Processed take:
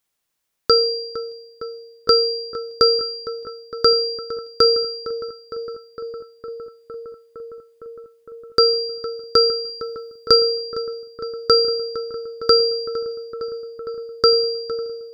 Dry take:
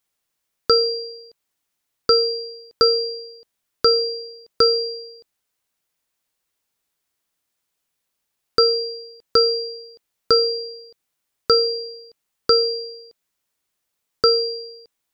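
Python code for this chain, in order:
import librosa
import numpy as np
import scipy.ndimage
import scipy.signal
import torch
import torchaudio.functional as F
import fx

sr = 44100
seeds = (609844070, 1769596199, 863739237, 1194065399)

y = fx.bass_treble(x, sr, bass_db=3, treble_db=4, at=(9.65, 10.36))
y = fx.echo_filtered(y, sr, ms=459, feedback_pct=85, hz=3200.0, wet_db=-13.5)
y = y * 10.0 ** (1.0 / 20.0)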